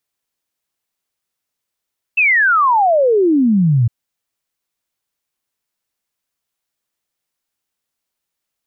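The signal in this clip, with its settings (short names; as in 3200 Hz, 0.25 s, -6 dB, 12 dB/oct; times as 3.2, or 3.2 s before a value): log sweep 2700 Hz -> 110 Hz 1.71 s -9.5 dBFS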